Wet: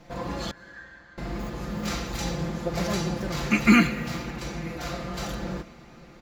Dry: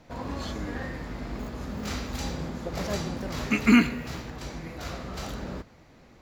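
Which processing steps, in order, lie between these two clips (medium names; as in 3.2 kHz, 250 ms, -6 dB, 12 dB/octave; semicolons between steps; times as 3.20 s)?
comb 5.8 ms, depth 74%; 0.51–1.18 s: band-pass filter 1.6 kHz, Q 13; reverberation RT60 5.6 s, pre-delay 105 ms, DRR 17.5 dB; trim +1.5 dB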